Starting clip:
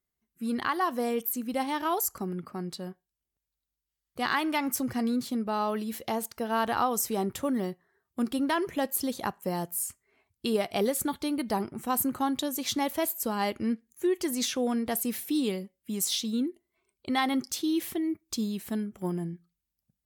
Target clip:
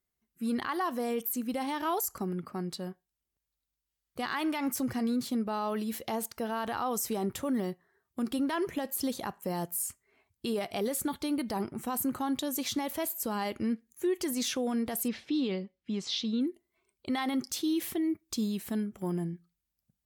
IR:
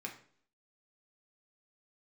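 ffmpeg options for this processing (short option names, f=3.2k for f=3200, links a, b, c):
-filter_complex "[0:a]asettb=1/sr,asplit=3[a][b][c];[a]atrim=end=15.084[d];[b]atrim=start=15.08:end=16.41,asetpts=PTS-STARTPTS,afade=t=in:d=0.004:c=qsin,afade=t=out:st=1.326:d=0.004:c=qsin,lowpass=f=4.8k:w=0.5412,lowpass=f=4.8k:w=1.3066[e];[c]atrim=start=16.406[f];[d][e]acrossfade=d=0.004:c1=hsin:c2=qsin[g];[g][f]acrossfade=d=0.004:c1=qsin:c2=hsin,alimiter=limit=-23dB:level=0:latency=1:release=37"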